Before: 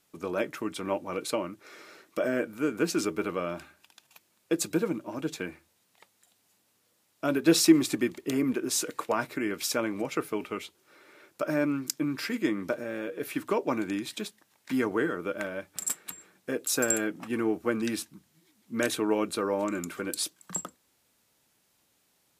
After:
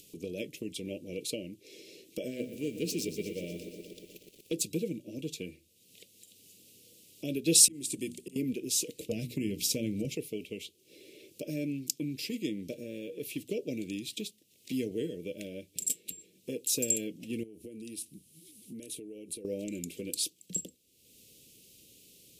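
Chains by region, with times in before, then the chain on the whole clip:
2.28–4.61 self-modulated delay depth 0.06 ms + de-hum 63.8 Hz, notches 15 + lo-fi delay 0.12 s, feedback 80%, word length 8-bit, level -11.5 dB
7.55–8.36 auto swell 0.463 s + bell 8800 Hz +13 dB 0.67 oct + notches 60/120/180/240 Hz
8.99–10.15 tone controls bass +11 dB, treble +2 dB + notches 60/120/180/240/300/360/420 Hz
17.43–19.45 compressor 20:1, threshold -39 dBFS + bell 10000 Hz +12.5 dB 0.46 oct
whole clip: elliptic band-stop 480–2700 Hz, stop band 70 dB; dynamic EQ 350 Hz, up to -7 dB, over -41 dBFS, Q 1.3; upward compressor, threshold -45 dBFS

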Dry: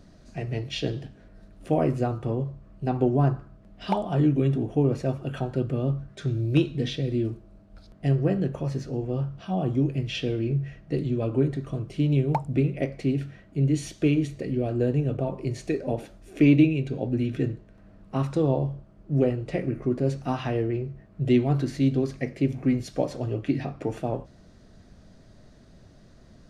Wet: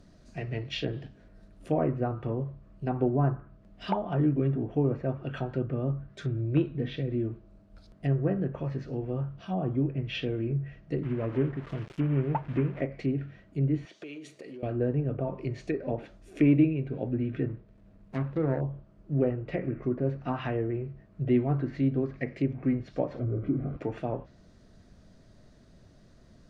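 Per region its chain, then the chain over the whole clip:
11.03–12.81 CVSD 16 kbps + sample gate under -40 dBFS
13.85–14.63 HPF 400 Hz + compressor 8:1, threshold -35 dBFS
17.47–18.61 median filter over 41 samples + notches 60/120/180/240/300/360/420/480/540/600 Hz
23.19–23.77 zero-crossing step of -27 dBFS + running mean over 49 samples + doubler 33 ms -14 dB
whole clip: notch 790 Hz, Q 24; treble ducked by the level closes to 1500 Hz, closed at -22.5 dBFS; dynamic EQ 1800 Hz, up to +5 dB, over -48 dBFS, Q 0.87; gain -4 dB

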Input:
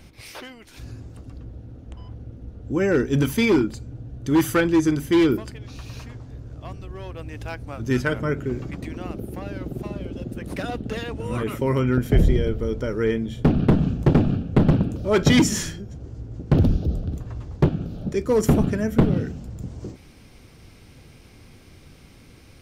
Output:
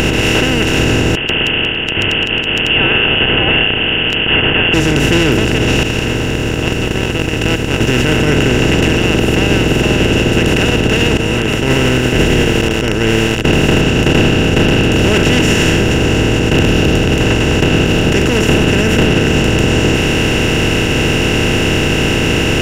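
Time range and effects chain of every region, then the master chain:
1.15–4.74 inverted band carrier 3100 Hz + gate with hold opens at -27 dBFS, closes at -33 dBFS + low shelf 410 Hz -9 dB
5.83–8.17 gate -32 dBFS, range -22 dB + bell 710 Hz -5 dB 0.38 oct + modulation noise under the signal 32 dB
11.17–13.81 gate -21 dBFS, range -26 dB + compressor 2:1, threshold -28 dBFS + lo-fi delay 80 ms, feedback 35%, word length 8-bit, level -5 dB
whole clip: per-bin compression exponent 0.2; upward compressor, threshold -13 dBFS; maximiser +2 dB; gain -1 dB

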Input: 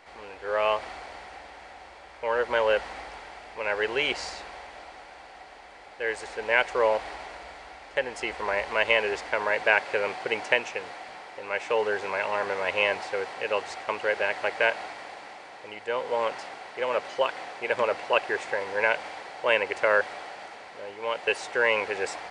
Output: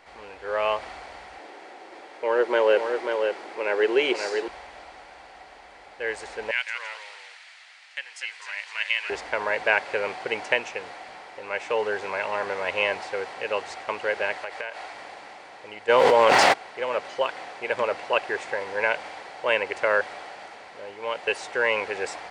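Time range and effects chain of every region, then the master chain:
1.38–4.48 HPF 220 Hz + bell 360 Hz +12.5 dB 0.69 oct + echo 0.538 s -5.5 dB
6.51–9.1 Chebyshev high-pass 2400 Hz + echoes that change speed 0.155 s, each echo -1 st, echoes 2, each echo -6 dB
14.37–14.94 bell 170 Hz -11.5 dB 1.5 oct + compressor, threshold -29 dBFS
15.88–16.52 crackle 120/s -47 dBFS + fast leveller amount 100%
whole clip: dry

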